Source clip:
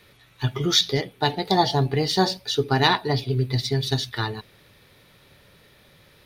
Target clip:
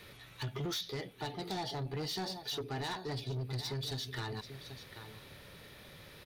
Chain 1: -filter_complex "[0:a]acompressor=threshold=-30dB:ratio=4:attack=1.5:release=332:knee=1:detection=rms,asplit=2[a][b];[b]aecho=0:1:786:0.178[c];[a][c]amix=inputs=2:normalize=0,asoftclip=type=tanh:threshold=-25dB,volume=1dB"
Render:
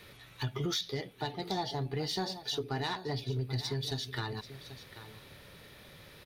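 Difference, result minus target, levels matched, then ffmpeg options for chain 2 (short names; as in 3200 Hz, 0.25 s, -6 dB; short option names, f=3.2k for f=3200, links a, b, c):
soft clip: distortion -11 dB
-filter_complex "[0:a]acompressor=threshold=-30dB:ratio=4:attack=1.5:release=332:knee=1:detection=rms,asplit=2[a][b];[b]aecho=0:1:786:0.178[c];[a][c]amix=inputs=2:normalize=0,asoftclip=type=tanh:threshold=-34.5dB,volume=1dB"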